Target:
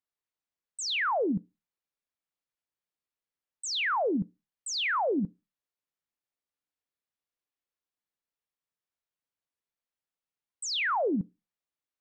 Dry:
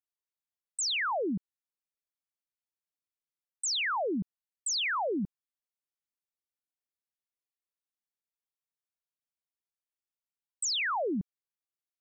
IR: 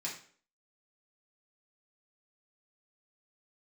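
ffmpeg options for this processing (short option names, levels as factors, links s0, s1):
-filter_complex "[0:a]lowpass=f=2900:p=1,asplit=2[s0][s1];[1:a]atrim=start_sample=2205,asetrate=74970,aresample=44100,lowshelf=f=220:g=6.5[s2];[s1][s2]afir=irnorm=-1:irlink=0,volume=0.251[s3];[s0][s3]amix=inputs=2:normalize=0,volume=1.41"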